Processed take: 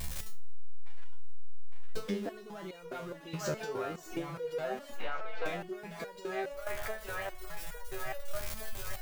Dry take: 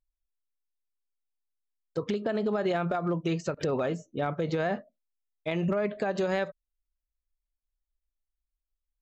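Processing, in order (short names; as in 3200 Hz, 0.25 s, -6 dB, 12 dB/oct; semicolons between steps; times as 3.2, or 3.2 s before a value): zero-crossing step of -35.5 dBFS; on a send: band-limited delay 0.86 s, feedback 44%, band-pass 1400 Hz, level -4 dB; on the sum: compressor 12:1, threshold -40 dBFS, peak gain reduction 17 dB; stepped resonator 4.8 Hz 76–480 Hz; gain +17.5 dB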